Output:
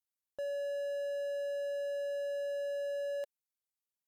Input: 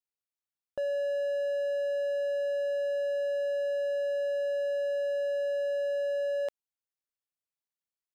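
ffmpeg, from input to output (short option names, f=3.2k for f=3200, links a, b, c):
-af "aemphasis=mode=production:type=cd,atempo=2,volume=-6dB"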